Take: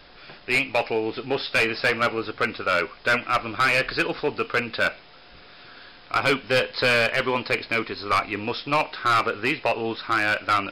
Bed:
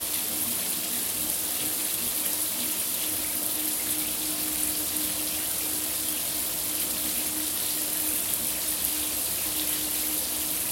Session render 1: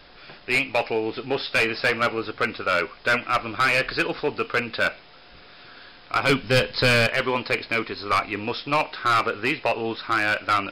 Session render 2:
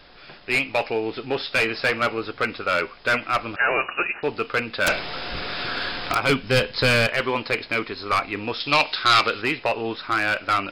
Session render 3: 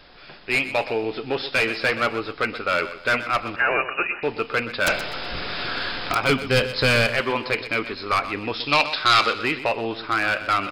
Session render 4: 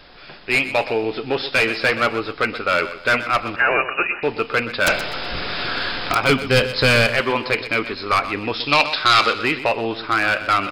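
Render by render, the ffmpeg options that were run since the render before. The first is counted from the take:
ffmpeg -i in.wav -filter_complex "[0:a]asettb=1/sr,asplit=3[link_01][link_02][link_03];[link_01]atrim=end=6.294[link_04];[link_02]atrim=start=6.29:end=7.07,asetpts=PTS-STARTPTS,afade=type=in:duration=0.004:curve=qsin,afade=type=out:start_time=0.776:duration=0.004:curve=qsin,bass=frequency=250:gain=10,treble=frequency=4000:gain=5[link_05];[link_03]atrim=start=7.066[link_06];[link_04][link_05]acrossfade=duration=0.004:curve1=hsin:curve2=qsin[link_07];[link_07][link_06]acrossfade=duration=0.004:curve1=qsin:curve2=hsin" out.wav
ffmpeg -i in.wav -filter_complex "[0:a]asettb=1/sr,asplit=3[link_01][link_02][link_03];[link_01]atrim=end=3.564[link_04];[link_02]atrim=start=3.56:end=4.23,asetpts=PTS-STARTPTS,afade=type=in:duration=0.004:curve=qsin,afade=type=out:start_time=0.666:duration=0.004:curve=qsin,lowpass=frequency=2500:width_type=q:width=0.5098,lowpass=frequency=2500:width_type=q:width=0.6013,lowpass=frequency=2500:width_type=q:width=0.9,lowpass=frequency=2500:width_type=q:width=2.563,afreqshift=-2900[link_05];[link_03]atrim=start=4.226[link_06];[link_04][link_05]acrossfade=duration=0.004:curve1=hsin:curve2=qsin[link_07];[link_07][link_06]acrossfade=duration=0.004:curve1=qsin:curve2=hsin,asplit=3[link_08][link_09][link_10];[link_08]afade=type=out:start_time=4.86:duration=0.02[link_11];[link_09]aeval=exprs='0.188*sin(PI/2*5.01*val(0)/0.188)':channel_layout=same,afade=type=in:start_time=4.86:duration=0.02,afade=type=out:start_time=6.13:duration=0.02[link_12];[link_10]afade=type=in:start_time=6.13:duration=0.02[link_13];[link_11][link_12][link_13]amix=inputs=3:normalize=0,asettb=1/sr,asplit=3[link_14][link_15][link_16];[link_14]atrim=end=8.604[link_17];[link_15]atrim=start=8.6:end=9.42,asetpts=PTS-STARTPTS,afade=type=in:duration=0.004:curve=qsin,afade=type=out:start_time=0.816:duration=0.004:curve=qsin,equalizer=frequency=4200:width=0.8:gain=12.5[link_18];[link_16]atrim=start=9.416[link_19];[link_17][link_18]acrossfade=duration=0.004:curve1=hsin:curve2=qsin[link_20];[link_20][link_19]acrossfade=duration=0.004:curve1=qsin:curve2=hsin" out.wav
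ffmpeg -i in.wav -af "aecho=1:1:125|250|375:0.224|0.0694|0.0215" out.wav
ffmpeg -i in.wav -af "volume=3.5dB,alimiter=limit=-3dB:level=0:latency=1" out.wav

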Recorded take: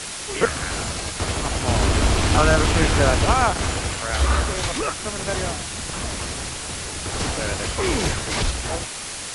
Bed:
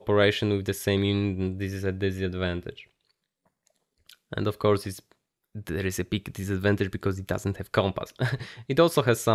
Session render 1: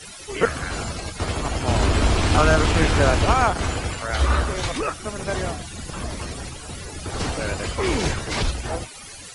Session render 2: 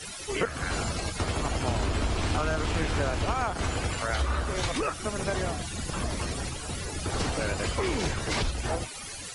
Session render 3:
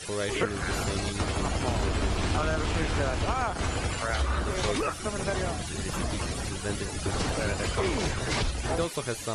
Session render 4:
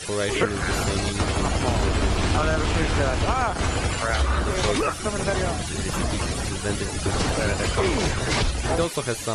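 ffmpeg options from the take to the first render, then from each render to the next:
ffmpeg -i in.wav -af "afftdn=noise_reduction=15:noise_floor=-32" out.wav
ffmpeg -i in.wav -af "acompressor=threshold=-25dB:ratio=5" out.wav
ffmpeg -i in.wav -i bed.wav -filter_complex "[1:a]volume=-10.5dB[link_01];[0:a][link_01]amix=inputs=2:normalize=0" out.wav
ffmpeg -i in.wav -af "volume=5.5dB" out.wav

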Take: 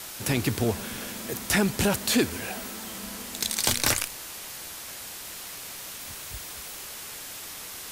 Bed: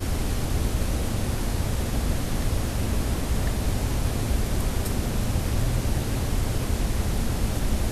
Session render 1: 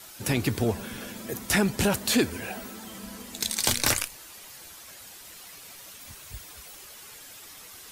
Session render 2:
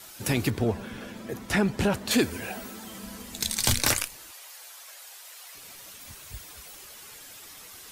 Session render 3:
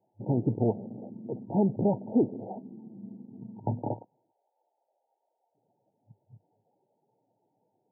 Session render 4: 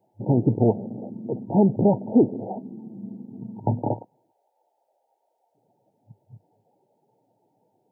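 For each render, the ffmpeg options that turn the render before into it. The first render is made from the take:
ffmpeg -i in.wav -af "afftdn=noise_reduction=9:noise_floor=-40" out.wav
ffmpeg -i in.wav -filter_complex "[0:a]asettb=1/sr,asplit=3[link_01][link_02][link_03];[link_01]atrim=end=0.504[link_04];[link_02]atrim=start=0.5:end=2.11,asetpts=PTS-STARTPTS,afade=type=in:duration=0.004:curve=qsin,afade=type=out:start_time=1.606:duration=0.004:curve=qsin,lowpass=frequency=2600:poles=1[link_05];[link_03]atrim=start=2.106[link_06];[link_04][link_05]acrossfade=duration=0.004:curve1=hsin:curve2=qsin[link_07];[link_07][link_06]acrossfade=duration=0.004:curve1=qsin:curve2=hsin,asettb=1/sr,asplit=3[link_08][link_09][link_10];[link_08]atrim=end=3.024[link_11];[link_09]atrim=start=3.02:end=3.79,asetpts=PTS-STARTPTS,afade=type=in:duration=0.004:curve=qsin,afade=type=out:start_time=0.766:duration=0.004:curve=qsin,asubboost=boost=10.5:cutoff=190[link_12];[link_10]atrim=start=3.786[link_13];[link_11][link_12]acrossfade=duration=0.004:curve1=hsin:curve2=qsin[link_14];[link_14][link_13]acrossfade=duration=0.004:curve1=qsin:curve2=hsin,asettb=1/sr,asplit=3[link_15][link_16][link_17];[link_15]atrim=end=4.314[link_18];[link_16]atrim=start=4.31:end=5.55,asetpts=PTS-STARTPTS,afade=type=in:duration=0.004:curve=qsin,afade=type=out:start_time=1.236:duration=0.004:curve=qsin,highpass=frequency=540:width=0.5412,highpass=frequency=540:width=1.3066[link_19];[link_17]atrim=start=5.546[link_20];[link_18][link_19]acrossfade=duration=0.004:curve1=hsin:curve2=qsin[link_21];[link_21][link_20]acrossfade=duration=0.004:curve1=qsin:curve2=hsin" out.wav
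ffmpeg -i in.wav -af "afwtdn=0.02,afftfilt=real='re*between(b*sr/4096,100,940)':imag='im*between(b*sr/4096,100,940)':win_size=4096:overlap=0.75" out.wav
ffmpeg -i in.wav -af "volume=7dB" out.wav

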